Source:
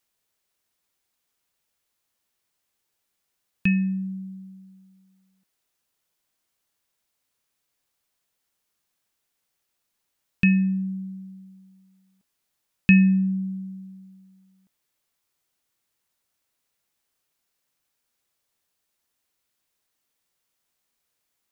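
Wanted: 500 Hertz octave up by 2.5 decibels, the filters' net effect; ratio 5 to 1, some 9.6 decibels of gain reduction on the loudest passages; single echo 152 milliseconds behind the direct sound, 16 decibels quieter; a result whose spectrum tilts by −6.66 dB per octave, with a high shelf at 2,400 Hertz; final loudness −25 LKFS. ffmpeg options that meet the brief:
ffmpeg -i in.wav -af "equalizer=frequency=500:width_type=o:gain=4,highshelf=frequency=2400:gain=-8,acompressor=threshold=-22dB:ratio=5,aecho=1:1:152:0.158,volume=3dB" out.wav

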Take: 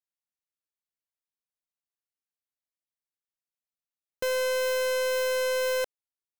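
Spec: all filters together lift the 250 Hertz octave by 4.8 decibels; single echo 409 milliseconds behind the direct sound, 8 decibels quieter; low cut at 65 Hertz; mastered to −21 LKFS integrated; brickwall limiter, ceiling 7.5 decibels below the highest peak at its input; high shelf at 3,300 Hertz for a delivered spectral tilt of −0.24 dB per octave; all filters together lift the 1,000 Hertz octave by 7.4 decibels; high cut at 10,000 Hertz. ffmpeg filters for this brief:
ffmpeg -i in.wav -af "highpass=65,lowpass=10000,equalizer=frequency=250:width_type=o:gain=6,equalizer=frequency=1000:width_type=o:gain=6.5,highshelf=frequency=3300:gain=8,alimiter=limit=-23.5dB:level=0:latency=1,aecho=1:1:409:0.398,volume=9dB" out.wav

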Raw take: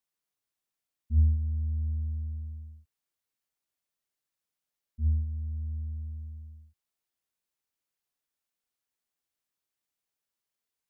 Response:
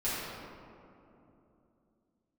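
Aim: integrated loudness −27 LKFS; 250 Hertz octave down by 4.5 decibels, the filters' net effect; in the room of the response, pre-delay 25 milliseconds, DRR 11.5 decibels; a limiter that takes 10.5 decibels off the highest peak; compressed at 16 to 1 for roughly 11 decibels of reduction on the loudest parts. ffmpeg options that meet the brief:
-filter_complex "[0:a]equalizer=frequency=250:width_type=o:gain=-5,acompressor=threshold=-29dB:ratio=16,alimiter=level_in=12dB:limit=-24dB:level=0:latency=1,volume=-12dB,asplit=2[link_01][link_02];[1:a]atrim=start_sample=2205,adelay=25[link_03];[link_02][link_03]afir=irnorm=-1:irlink=0,volume=-19.5dB[link_04];[link_01][link_04]amix=inputs=2:normalize=0,volume=18dB"

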